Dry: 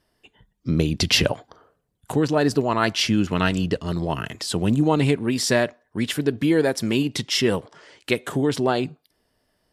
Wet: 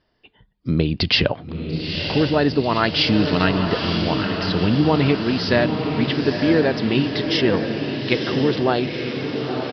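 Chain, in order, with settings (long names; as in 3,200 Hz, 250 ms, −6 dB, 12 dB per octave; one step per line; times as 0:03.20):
0:02.94–0:03.45: spike at every zero crossing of −12 dBFS
downsampling to 11,025 Hz
feedback delay with all-pass diffusion 936 ms, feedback 61%, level −5.5 dB
level +1.5 dB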